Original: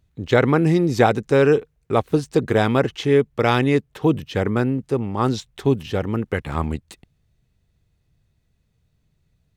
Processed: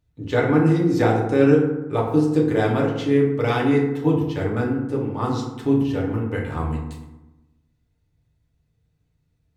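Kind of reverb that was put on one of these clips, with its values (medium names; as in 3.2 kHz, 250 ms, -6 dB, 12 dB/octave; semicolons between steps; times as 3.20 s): FDN reverb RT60 1 s, low-frequency decay 1.25×, high-frequency decay 0.45×, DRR -3.5 dB; trim -8.5 dB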